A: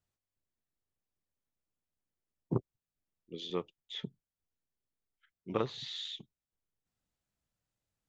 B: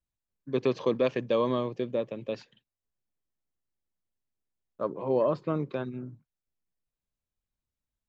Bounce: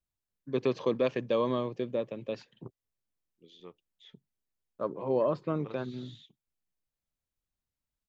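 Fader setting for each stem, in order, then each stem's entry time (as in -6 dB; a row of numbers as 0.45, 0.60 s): -14.0, -2.0 dB; 0.10, 0.00 s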